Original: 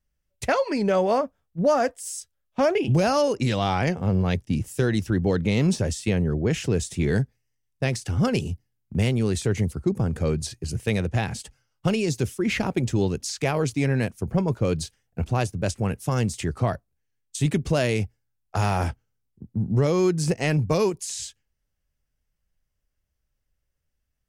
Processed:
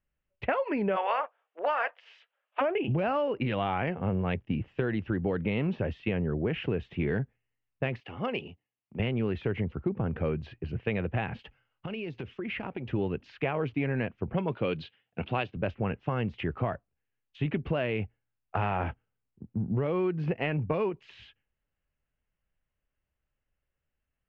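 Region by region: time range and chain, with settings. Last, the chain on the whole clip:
0.95–2.60 s: spectral peaks clipped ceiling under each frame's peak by 18 dB + high-pass 530 Hz 24 dB/octave
8.00–9.00 s: high-pass 620 Hz 6 dB/octave + peaking EQ 1.5 kHz -10.5 dB 0.27 oct
11.39–12.89 s: treble shelf 3.8 kHz +8.5 dB + compression 16:1, threshold -29 dBFS
14.34–15.57 s: high-pass 130 Hz + peaking EQ 3.8 kHz +13.5 dB 1.2 oct
whole clip: bass shelf 140 Hz -7 dB; compression, threshold -24 dBFS; elliptic low-pass 2.9 kHz, stop band 80 dB

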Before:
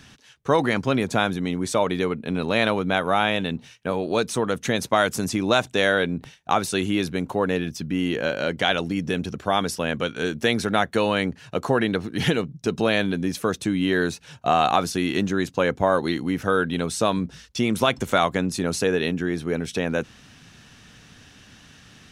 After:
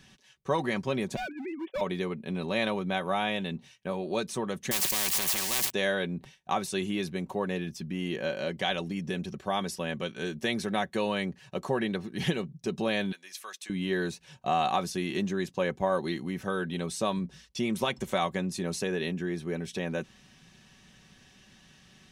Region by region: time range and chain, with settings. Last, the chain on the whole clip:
1.16–1.81 s: formants replaced by sine waves + expander -37 dBFS + overload inside the chain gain 23.5 dB
4.71–5.70 s: zero-crossing glitches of -23 dBFS + low-pass 3.9 kHz 6 dB/octave + spectrum-flattening compressor 10:1
13.12–13.70 s: high-pass 1.4 kHz + de-esser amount 35%
whole clip: band-stop 1.4 kHz, Q 6.3; comb 5.3 ms, depth 48%; trim -8.5 dB

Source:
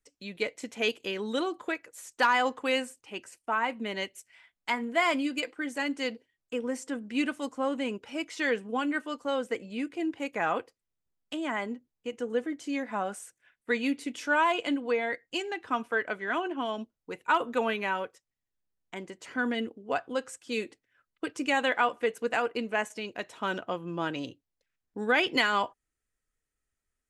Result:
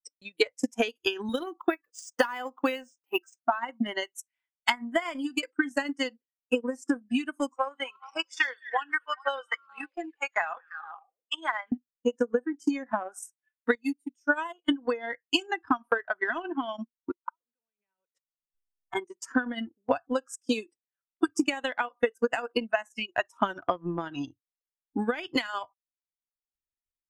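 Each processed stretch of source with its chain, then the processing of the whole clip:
1.29–3.38 s: high-pass 140 Hz + decimation joined by straight lines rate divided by 3×
7.56–11.72 s: high-pass 790 Hz + treble shelf 6.8 kHz -9.5 dB + repeats whose band climbs or falls 103 ms, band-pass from 4.5 kHz, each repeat -0.7 oct, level -6.5 dB
13.75–14.69 s: treble shelf 8.5 kHz +5 dB + upward expansion 2.5:1, over -33 dBFS
17.11–18.95 s: compression 10:1, threshold -33 dBFS + inverted gate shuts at -32 dBFS, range -31 dB
whole clip: spectral noise reduction 23 dB; compression 12:1, threshold -34 dBFS; transient shaper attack +11 dB, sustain -11 dB; trim +4 dB

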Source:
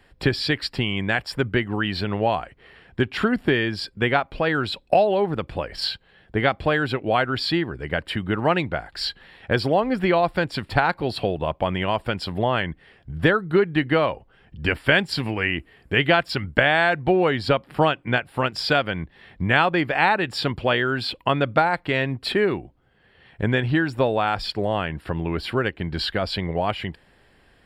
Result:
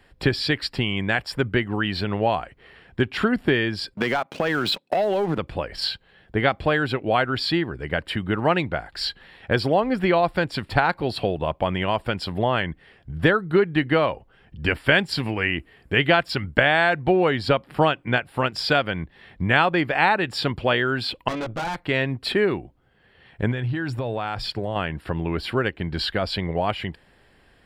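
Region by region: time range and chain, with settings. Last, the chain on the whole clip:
3.94–5.38 s: high-pass 140 Hz 24 dB/octave + waveshaping leveller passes 2 + compression 12:1, threshold -18 dBFS
21.28–21.76 s: de-esser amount 80% + doubling 18 ms -3 dB + valve stage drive 25 dB, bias 0.8
23.51–24.76 s: peaking EQ 120 Hz +8.5 dB 0.28 oct + compression 10:1, threshold -22 dBFS
whole clip: none

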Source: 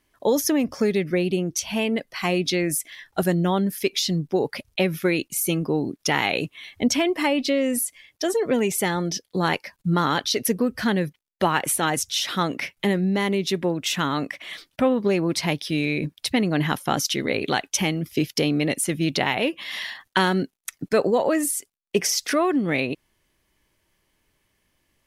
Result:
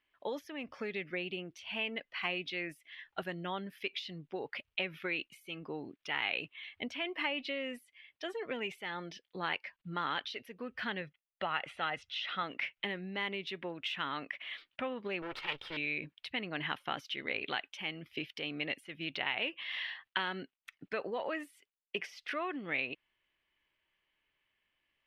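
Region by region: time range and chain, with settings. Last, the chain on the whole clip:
11.01–12.43 s: distance through air 96 m + comb 1.5 ms, depth 39%
15.22–15.77 s: comb filter that takes the minimum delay 2.2 ms + peaking EQ 1.3 kHz +5 dB 0.28 oct + loudspeaker Doppler distortion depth 0.36 ms
whole clip: pre-emphasis filter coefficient 0.8; compression 6:1, threshold -30 dBFS; FFT filter 170 Hz 0 dB, 1.3 kHz +10 dB, 2.9 kHz +11 dB, 6.8 kHz -22 dB, 11 kHz -26 dB; trim -7.5 dB

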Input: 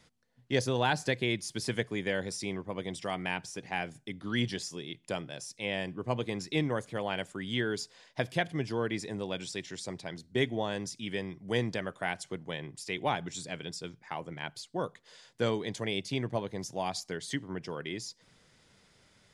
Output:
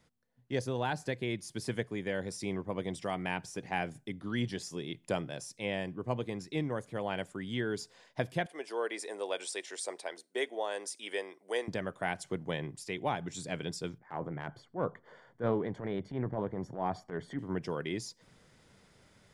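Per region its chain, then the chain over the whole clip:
8.46–11.68 s: high-pass 420 Hz 24 dB/octave + peaking EQ 8.9 kHz +11 dB 0.22 oct
13.98–17.39 s: Savitzky-Golay filter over 41 samples + transient shaper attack -11 dB, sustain +4 dB + loudspeaker Doppler distortion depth 0.12 ms
whole clip: peaking EQ 4.3 kHz -6 dB 2.5 oct; gain riding within 4 dB 0.5 s

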